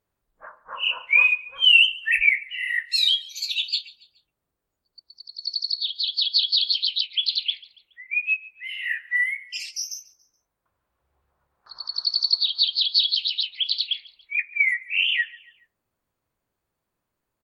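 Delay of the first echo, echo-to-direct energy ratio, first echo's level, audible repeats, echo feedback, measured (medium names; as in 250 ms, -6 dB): 141 ms, -21.0 dB, -22.0 dB, 2, 43%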